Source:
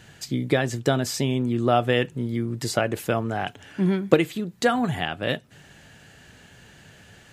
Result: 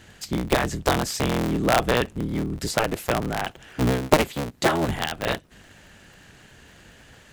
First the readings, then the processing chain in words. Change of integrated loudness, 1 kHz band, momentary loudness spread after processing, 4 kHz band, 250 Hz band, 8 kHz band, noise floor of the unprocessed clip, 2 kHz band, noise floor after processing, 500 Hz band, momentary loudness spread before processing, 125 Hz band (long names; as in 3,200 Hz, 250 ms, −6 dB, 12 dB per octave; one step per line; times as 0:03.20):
0.0 dB, +2.5 dB, 8 LU, +2.0 dB, −1.5 dB, +3.0 dB, −51 dBFS, +1.5 dB, −51 dBFS, −0.5 dB, 8 LU, −1.0 dB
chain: sub-harmonics by changed cycles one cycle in 3, inverted